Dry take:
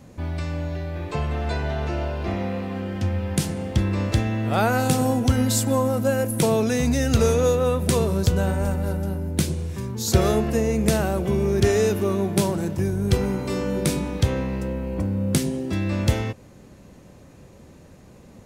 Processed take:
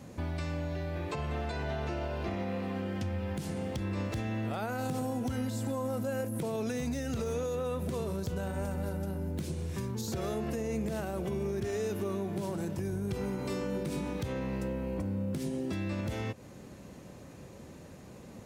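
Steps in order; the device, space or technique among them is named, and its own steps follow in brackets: podcast mastering chain (HPF 86 Hz 6 dB/oct; de-esser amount 65%; compressor 2.5:1, threshold -33 dBFS, peak gain reduction 13.5 dB; limiter -25 dBFS, peak gain reduction 7 dB; MP3 96 kbps 48000 Hz)

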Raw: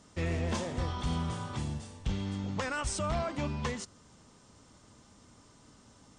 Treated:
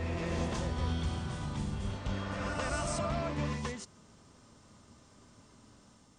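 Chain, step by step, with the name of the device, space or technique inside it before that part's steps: reverse reverb (reverse; reverb RT60 2.7 s, pre-delay 0.118 s, DRR -1 dB; reverse); gain -4 dB

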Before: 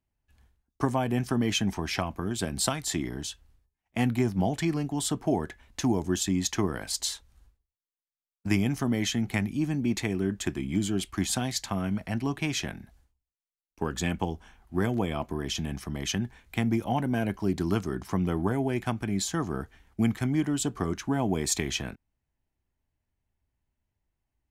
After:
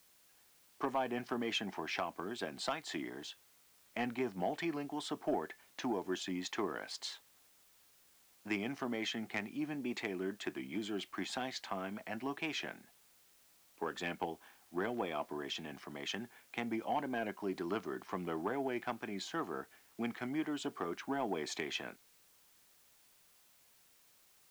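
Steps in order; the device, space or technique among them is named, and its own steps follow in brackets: tape answering machine (BPF 380–3300 Hz; soft clip -19.5 dBFS, distortion -21 dB; wow and flutter; white noise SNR 26 dB); gain -4 dB

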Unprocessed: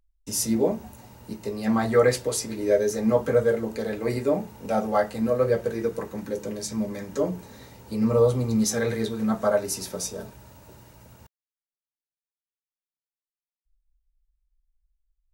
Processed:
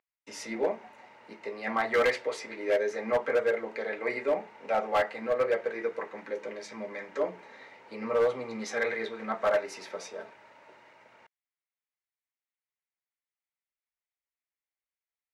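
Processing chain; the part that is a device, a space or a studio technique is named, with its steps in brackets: megaphone (BPF 550–2700 Hz; bell 2100 Hz +9 dB 0.44 oct; hard clip -20 dBFS, distortion -13 dB)

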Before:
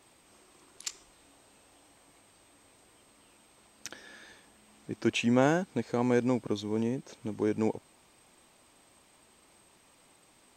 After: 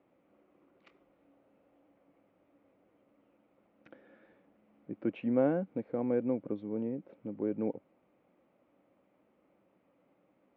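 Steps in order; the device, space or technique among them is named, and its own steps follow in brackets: bass cabinet (speaker cabinet 67–2100 Hz, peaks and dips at 79 Hz -8 dB, 190 Hz +7 dB, 290 Hz +8 dB, 540 Hz +10 dB, 980 Hz -5 dB, 1700 Hz -7 dB); gain -9 dB

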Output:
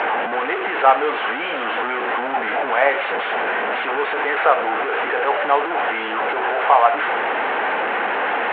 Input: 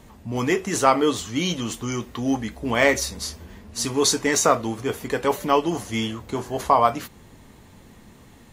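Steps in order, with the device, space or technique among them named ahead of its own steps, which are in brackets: digital answering machine (BPF 380–3300 Hz; delta modulation 16 kbps, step -17 dBFS; speaker cabinet 440–4100 Hz, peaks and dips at 480 Hz +4 dB, 770 Hz +9 dB, 1500 Hz +8 dB, 3500 Hz -4 dB)

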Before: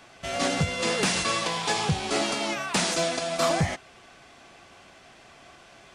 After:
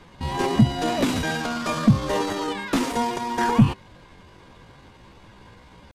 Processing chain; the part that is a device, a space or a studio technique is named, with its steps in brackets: RIAA curve playback; chipmunk voice (pitch shift +6 st)

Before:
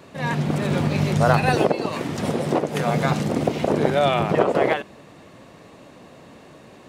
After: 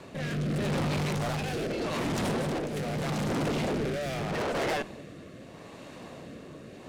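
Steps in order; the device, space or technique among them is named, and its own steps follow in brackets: overdriven rotary cabinet (tube stage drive 32 dB, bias 0.6; rotary speaker horn 0.8 Hz); gain +5.5 dB

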